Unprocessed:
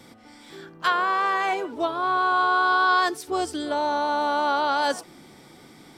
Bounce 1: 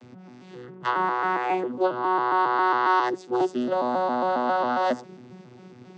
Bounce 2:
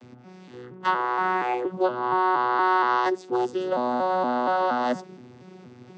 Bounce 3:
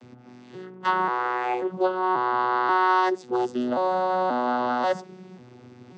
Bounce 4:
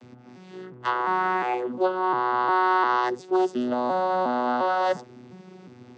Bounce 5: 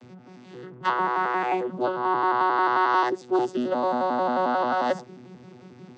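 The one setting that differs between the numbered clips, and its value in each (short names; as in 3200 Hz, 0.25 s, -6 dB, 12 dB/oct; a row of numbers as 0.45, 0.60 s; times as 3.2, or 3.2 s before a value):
arpeggiated vocoder, a note every: 136, 235, 537, 354, 89 ms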